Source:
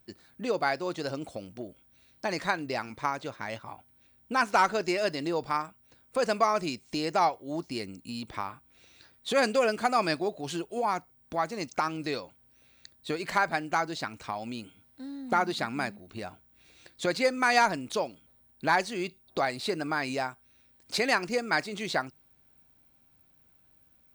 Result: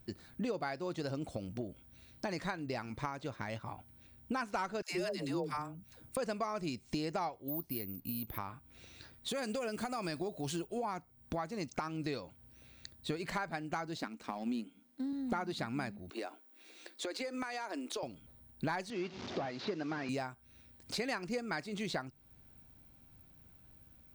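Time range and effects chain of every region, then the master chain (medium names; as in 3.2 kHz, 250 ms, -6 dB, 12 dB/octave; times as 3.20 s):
4.82–6.17 s: peaking EQ 12 kHz +10.5 dB 0.95 oct + phase dispersion lows, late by 122 ms, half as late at 470 Hz
7.48–8.38 s: distance through air 90 m + careless resampling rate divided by 3×, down none, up zero stuff
9.28–10.67 s: treble shelf 7.8 kHz +11.5 dB + compression 2.5:1, threshold -28 dBFS
13.97–15.13 s: companding laws mixed up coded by A + resonant low shelf 160 Hz -12.5 dB, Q 3
16.10–18.03 s: steep high-pass 270 Hz 48 dB/octave + compression 5:1, threshold -31 dBFS
18.90–20.09 s: one-bit delta coder 32 kbps, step -42.5 dBFS + upward compressor, threshold -37 dBFS + high-pass 210 Hz
whole clip: compression 2.5:1, threshold -43 dBFS; bass shelf 230 Hz +10.5 dB; trim +1 dB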